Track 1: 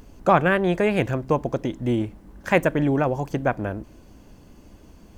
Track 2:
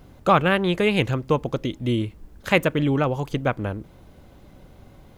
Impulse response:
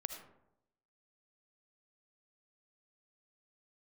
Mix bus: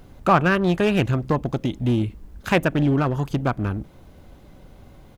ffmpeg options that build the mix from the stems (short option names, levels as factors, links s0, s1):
-filter_complex "[0:a]afwtdn=0.0398,volume=1.06[s0];[1:a]acompressor=threshold=0.0794:ratio=3,asoftclip=type=hard:threshold=0.0944,adelay=0.9,volume=1.06[s1];[s0][s1]amix=inputs=2:normalize=0"